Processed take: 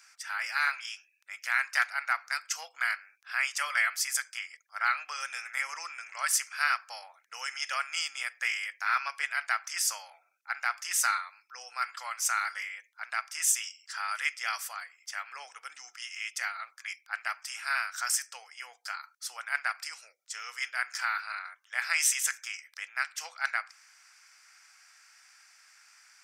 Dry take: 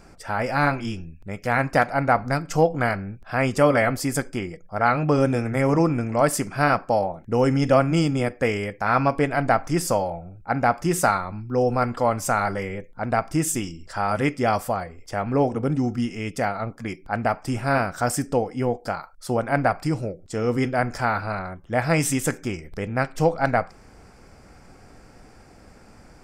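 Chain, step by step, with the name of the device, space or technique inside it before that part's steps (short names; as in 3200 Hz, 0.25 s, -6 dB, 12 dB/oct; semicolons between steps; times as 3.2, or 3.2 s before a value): headphones lying on a table (HPF 1500 Hz 24 dB/oct; bell 6000 Hz +6 dB 0.3 oct)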